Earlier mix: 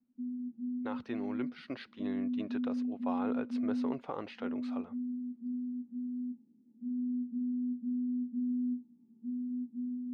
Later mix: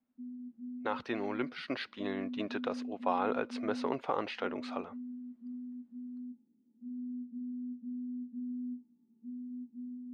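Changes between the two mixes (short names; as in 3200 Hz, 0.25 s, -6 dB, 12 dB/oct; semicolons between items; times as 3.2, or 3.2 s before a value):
speech +8.5 dB; master: add low shelf 330 Hz -9.5 dB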